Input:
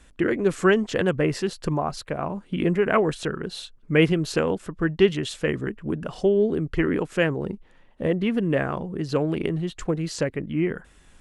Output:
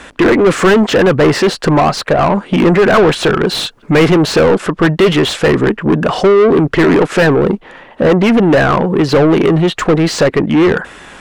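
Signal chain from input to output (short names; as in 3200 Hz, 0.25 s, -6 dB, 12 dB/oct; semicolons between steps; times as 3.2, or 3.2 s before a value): 3.46–3.94 high shelf 4000 Hz -> 6000 Hz +8 dB; overdrive pedal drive 32 dB, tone 1500 Hz, clips at -5 dBFS; gain +4.5 dB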